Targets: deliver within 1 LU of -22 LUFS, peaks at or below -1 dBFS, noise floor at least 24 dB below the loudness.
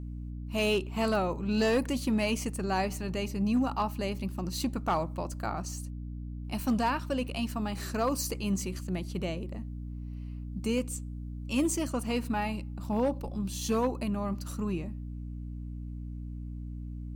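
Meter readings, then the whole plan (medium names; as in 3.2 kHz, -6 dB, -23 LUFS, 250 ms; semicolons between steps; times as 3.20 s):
clipped samples 0.3%; clipping level -20.5 dBFS; hum 60 Hz; highest harmonic 300 Hz; hum level -36 dBFS; loudness -32.5 LUFS; peak level -20.5 dBFS; loudness target -22.0 LUFS
-> clip repair -20.5 dBFS; hum notches 60/120/180/240/300 Hz; trim +10.5 dB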